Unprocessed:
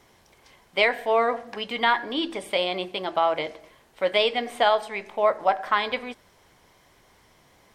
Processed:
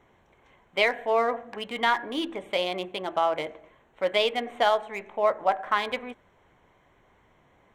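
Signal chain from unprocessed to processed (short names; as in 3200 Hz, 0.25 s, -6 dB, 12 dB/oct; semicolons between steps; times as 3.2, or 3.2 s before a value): Wiener smoothing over 9 samples; gain -2 dB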